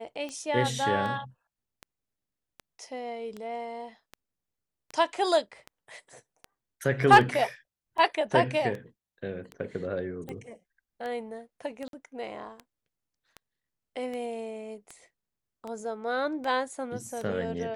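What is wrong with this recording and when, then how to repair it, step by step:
scratch tick 78 rpm −25 dBFS
0:11.88–0:11.93: drop-out 52 ms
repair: click removal
repair the gap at 0:11.88, 52 ms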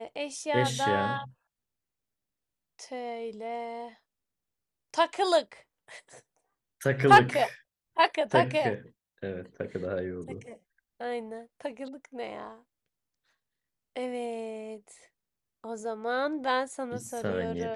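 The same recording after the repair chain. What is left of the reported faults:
none of them is left

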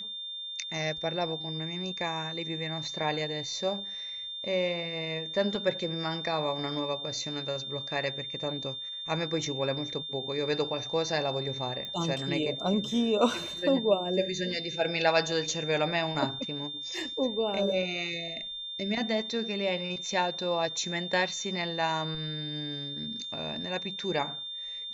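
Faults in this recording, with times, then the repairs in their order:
whistle 3,600 Hz −36 dBFS
0:11.85: click −24 dBFS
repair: click removal
notch filter 3,600 Hz, Q 30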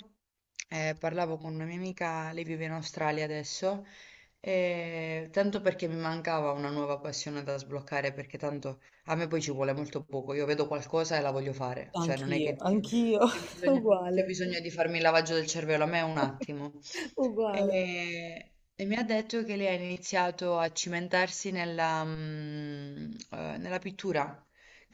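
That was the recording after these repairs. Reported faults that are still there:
none of them is left

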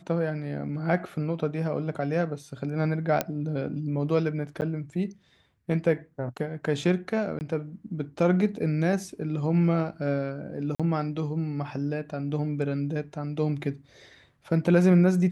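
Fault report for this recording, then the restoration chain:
0:03.21: click −9 dBFS
0:04.61–0:04.62: drop-out 9.4 ms
0:07.39–0:07.41: drop-out 19 ms
0:10.75–0:10.80: drop-out 46 ms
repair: click removal
repair the gap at 0:04.61, 9.4 ms
repair the gap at 0:07.39, 19 ms
repair the gap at 0:10.75, 46 ms

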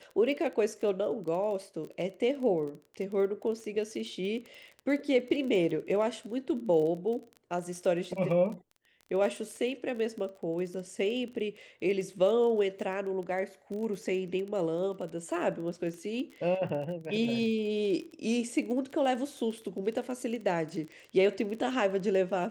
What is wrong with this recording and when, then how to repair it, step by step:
surface crackle 23 per second −37 dBFS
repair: click removal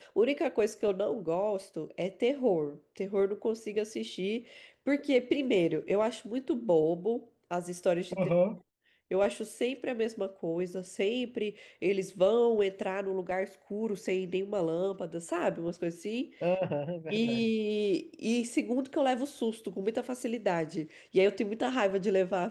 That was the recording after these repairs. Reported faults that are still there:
none of them is left

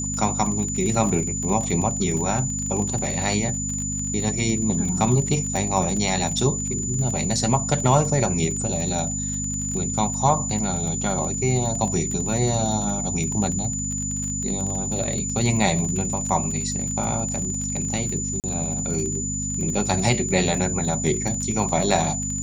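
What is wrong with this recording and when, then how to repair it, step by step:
surface crackle 30 per second −27 dBFS
mains hum 50 Hz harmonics 5 −30 dBFS
whistle 7,000 Hz −27 dBFS
0:18.40–0:18.44: drop-out 38 ms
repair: click removal
hum removal 50 Hz, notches 5
notch filter 7,000 Hz, Q 30
repair the gap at 0:18.40, 38 ms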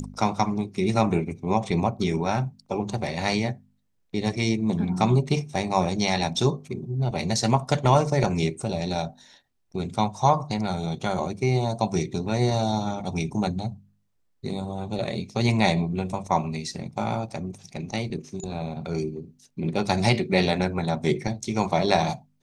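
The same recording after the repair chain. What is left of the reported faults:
none of them is left

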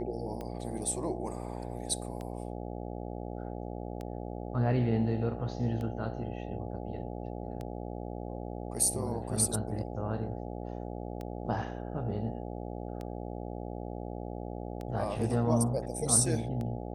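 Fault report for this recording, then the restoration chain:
mains buzz 60 Hz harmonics 14 −39 dBFS
scratch tick 33 1/3 rpm −27 dBFS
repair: click removal
hum removal 60 Hz, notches 14

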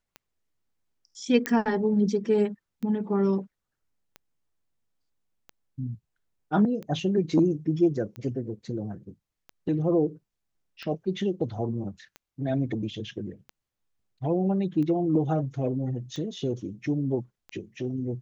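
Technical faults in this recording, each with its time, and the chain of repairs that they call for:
scratch tick 45 rpm −26 dBFS
0:01.46: click −11 dBFS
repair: click removal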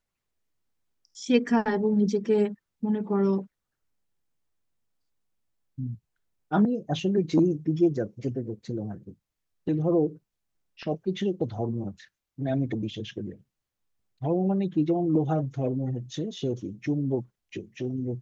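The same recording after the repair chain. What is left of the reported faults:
none of them is left

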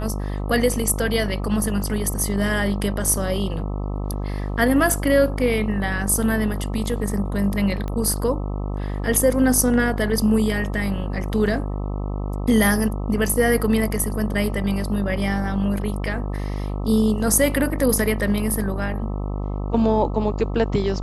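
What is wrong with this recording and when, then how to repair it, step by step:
mains buzz 50 Hz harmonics 26 −26 dBFS
0:07.88: click −17 dBFS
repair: click removal
hum removal 50 Hz, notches 26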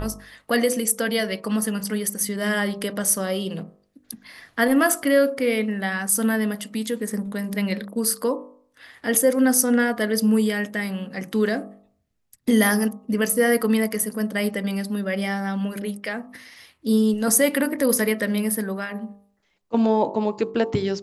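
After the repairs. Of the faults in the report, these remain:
none of them is left

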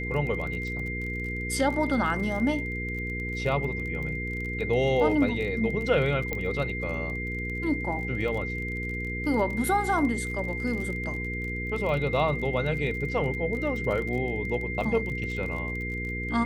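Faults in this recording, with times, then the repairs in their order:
surface crackle 34 per second −34 dBFS
mains hum 60 Hz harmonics 8 −34 dBFS
whistle 2,100 Hz −33 dBFS
0:06.33: click −15 dBFS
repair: click removal
hum removal 60 Hz, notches 8
notch filter 2,100 Hz, Q 30

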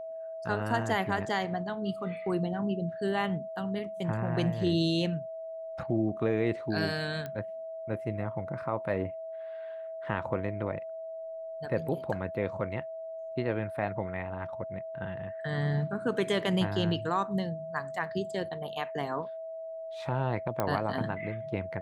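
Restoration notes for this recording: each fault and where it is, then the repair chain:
whistle 650 Hz −37 dBFS
0:07.26: click −24 dBFS
0:20.60: click −15 dBFS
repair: click removal
notch filter 650 Hz, Q 30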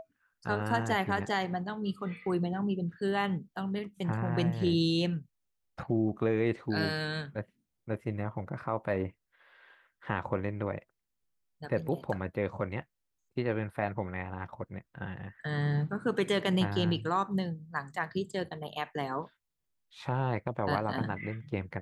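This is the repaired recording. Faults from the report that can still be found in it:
none of them is left

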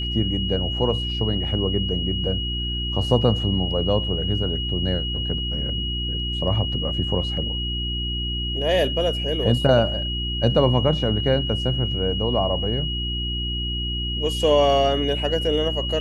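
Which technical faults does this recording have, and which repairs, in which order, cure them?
mains hum 60 Hz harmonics 6 −28 dBFS
whistle 2,900 Hz −27 dBFS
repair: hum removal 60 Hz, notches 6
notch filter 2,900 Hz, Q 30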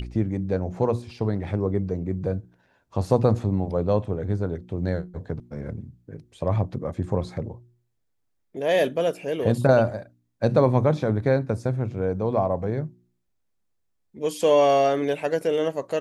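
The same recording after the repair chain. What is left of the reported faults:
none of them is left

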